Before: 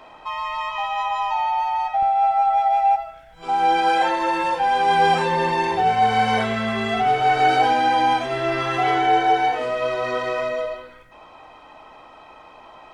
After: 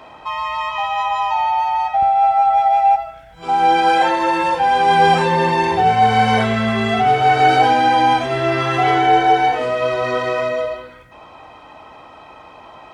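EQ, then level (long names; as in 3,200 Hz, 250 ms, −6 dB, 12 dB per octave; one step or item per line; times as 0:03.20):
high-pass filter 70 Hz
low-shelf EQ 130 Hz +10 dB
+4.0 dB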